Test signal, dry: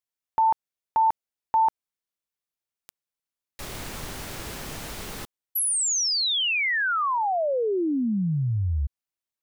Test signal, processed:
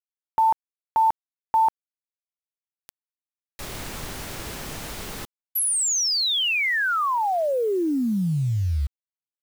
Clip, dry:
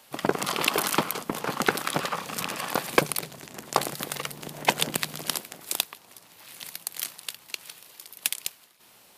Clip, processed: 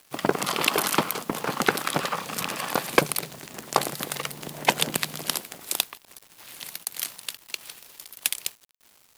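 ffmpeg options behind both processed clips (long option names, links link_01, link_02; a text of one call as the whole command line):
ffmpeg -i in.wav -af "acrusher=bits=7:mix=0:aa=0.000001,volume=1.5dB" out.wav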